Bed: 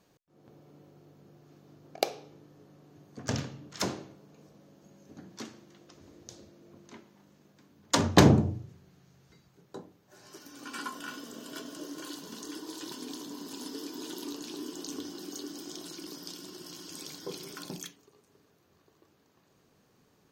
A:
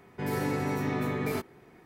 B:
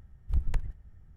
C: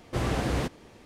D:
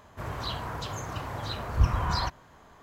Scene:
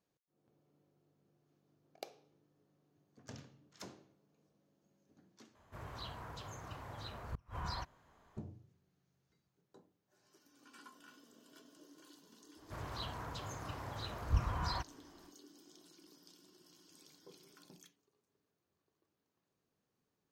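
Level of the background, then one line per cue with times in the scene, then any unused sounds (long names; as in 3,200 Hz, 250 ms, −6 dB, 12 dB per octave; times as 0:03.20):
bed −19 dB
0:05.55: overwrite with D −13 dB + gate with flip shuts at −16 dBFS, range −31 dB
0:12.53: mix in D −9.5 dB, fades 0.10 s
not used: A, B, C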